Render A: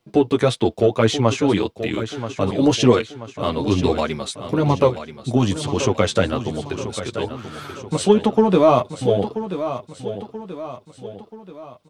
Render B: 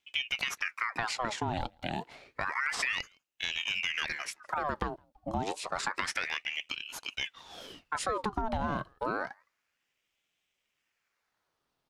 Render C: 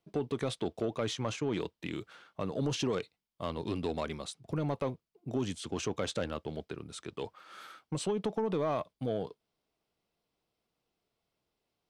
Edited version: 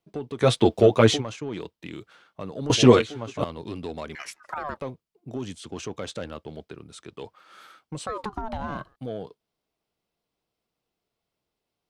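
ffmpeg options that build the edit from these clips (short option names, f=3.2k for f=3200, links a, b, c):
-filter_complex "[0:a]asplit=2[a][b];[1:a]asplit=2[c][d];[2:a]asplit=5[e][f][g][h][i];[e]atrim=end=0.48[j];[a]atrim=start=0.38:end=1.23[k];[f]atrim=start=1.13:end=2.702[l];[b]atrim=start=2.698:end=3.442[m];[g]atrim=start=3.438:end=4.152[n];[c]atrim=start=4.148:end=4.772[o];[h]atrim=start=4.768:end=8.072[p];[d]atrim=start=8.068:end=8.962[q];[i]atrim=start=8.958[r];[j][k]acrossfade=d=0.1:c1=tri:c2=tri[s];[s][l]acrossfade=d=0.1:c1=tri:c2=tri[t];[t][m]acrossfade=d=0.004:c1=hsin:c2=hsin[u];[u][n]acrossfade=d=0.004:c1=hsin:c2=hsin[v];[v][o]acrossfade=d=0.004:c1=hsin:c2=hsin[w];[w][p]acrossfade=d=0.004:c1=hsin:c2=hsin[x];[x][q]acrossfade=d=0.004:c1=hsin:c2=hsin[y];[y][r]acrossfade=d=0.004:c1=hsin:c2=hsin"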